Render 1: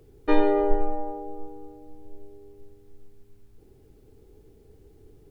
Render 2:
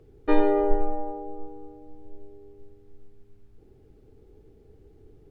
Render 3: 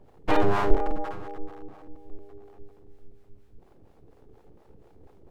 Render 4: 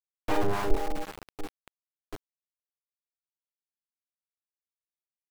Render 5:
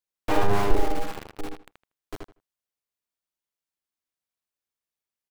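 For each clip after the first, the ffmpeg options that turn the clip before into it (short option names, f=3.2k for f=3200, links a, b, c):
-af "lowpass=f=2.7k:p=1,bandreject=f=1k:w=19"
-filter_complex "[0:a]aeval=exprs='abs(val(0))':c=same,acrossover=split=480[a][b];[a]aeval=exprs='val(0)*(1-0.7/2+0.7/2*cos(2*PI*4.2*n/s))':c=same[c];[b]aeval=exprs='val(0)*(1-0.7/2-0.7/2*cos(2*PI*4.2*n/s))':c=same[d];[c][d]amix=inputs=2:normalize=0,volume=4.5dB"
-af "areverse,acompressor=mode=upward:threshold=-29dB:ratio=2.5,areverse,aeval=exprs='val(0)*gte(abs(val(0)),0.0473)':c=same,volume=-5.5dB"
-filter_complex "[0:a]asplit=2[a][b];[b]adelay=79,lowpass=f=4k:p=1,volume=-3.5dB,asplit=2[c][d];[d]adelay=79,lowpass=f=4k:p=1,volume=0.18,asplit=2[e][f];[f]adelay=79,lowpass=f=4k:p=1,volume=0.18[g];[a][c][e][g]amix=inputs=4:normalize=0,volume=3.5dB"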